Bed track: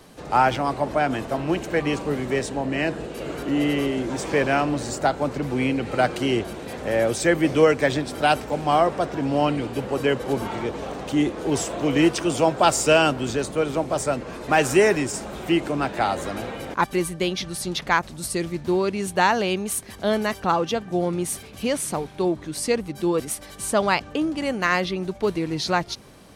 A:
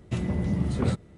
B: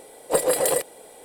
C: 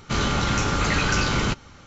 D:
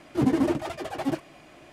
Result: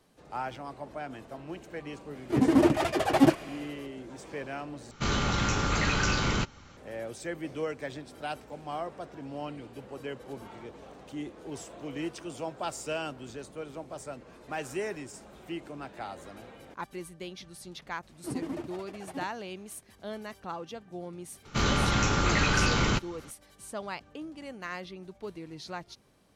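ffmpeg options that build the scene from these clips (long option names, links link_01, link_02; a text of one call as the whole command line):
ffmpeg -i bed.wav -i cue0.wav -i cue1.wav -i cue2.wav -i cue3.wav -filter_complex "[4:a]asplit=2[link_01][link_02];[3:a]asplit=2[link_03][link_04];[0:a]volume=-17dB[link_05];[link_01]dynaudnorm=framelen=110:gausssize=7:maxgain=14dB[link_06];[link_05]asplit=2[link_07][link_08];[link_07]atrim=end=4.914[link_09];[link_03]atrim=end=1.86,asetpts=PTS-STARTPTS,volume=-5dB[link_10];[link_08]atrim=start=6.766[link_11];[link_06]atrim=end=1.72,asetpts=PTS-STARTPTS,volume=-4.5dB,afade=type=in:duration=0.004:curve=hsin,afade=type=out:start_time=1.716:duration=0.004:curve=hsin,adelay=2150[link_12];[link_02]atrim=end=1.72,asetpts=PTS-STARTPTS,volume=-13dB,afade=type=in:duration=0.004:curve=hsin,afade=type=out:start_time=1.716:duration=0.004:curve=hsin,adelay=18090[link_13];[link_04]atrim=end=1.86,asetpts=PTS-STARTPTS,volume=-3dB,afade=type=in:duration=0.004:curve=hsin,afade=type=out:start_time=1.856:duration=0.004:curve=hsin,adelay=21450[link_14];[link_09][link_10]acrossfade=duration=0.004:curve1=hsin:curve2=hsin[link_15];[link_15][link_11]acrossfade=duration=0.004:curve1=hsin:curve2=hsin[link_16];[link_16][link_12][link_13][link_14]amix=inputs=4:normalize=0" out.wav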